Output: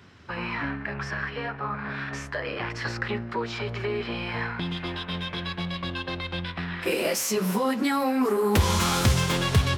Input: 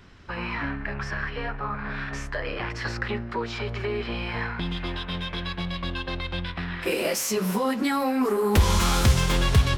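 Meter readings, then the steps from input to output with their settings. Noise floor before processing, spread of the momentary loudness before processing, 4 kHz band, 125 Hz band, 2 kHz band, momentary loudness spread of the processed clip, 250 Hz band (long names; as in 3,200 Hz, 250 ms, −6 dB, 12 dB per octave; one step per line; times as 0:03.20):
−36 dBFS, 11 LU, 0.0 dB, −1.5 dB, 0.0 dB, 10 LU, 0.0 dB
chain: high-pass filter 74 Hz 24 dB per octave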